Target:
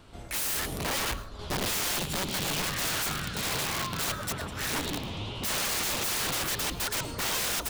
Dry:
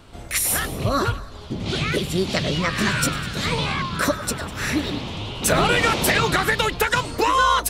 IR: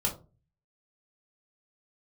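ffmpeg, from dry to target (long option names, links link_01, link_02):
-filter_complex "[0:a]asettb=1/sr,asplit=3[link_01][link_02][link_03];[link_01]atrim=end=1.394[link_04];[link_02]atrim=start=1.39:end=1.97,asetpts=PTS-STARTPTS,afade=type=in:duration=0.004:curve=qsin,afade=type=out:start_time=0.576:duration=0.004:curve=qsin,acontrast=44[link_05];[link_03]atrim=start=1.966[link_06];[link_04][link_05]acrossfade=duration=0.004:curve1=hsin:curve2=qsin[link_07];[link_07][link_06]acrossfade=duration=0.004:curve1=qsin:curve2=hsin,aeval=exprs='(mod(8.91*val(0)+1,2)-1)/8.91':channel_layout=same,asplit=2[link_08][link_09];[1:a]atrim=start_sample=2205,adelay=107[link_10];[link_09][link_10]afir=irnorm=-1:irlink=0,volume=-24dB[link_11];[link_08][link_11]amix=inputs=2:normalize=0,volume=-6dB"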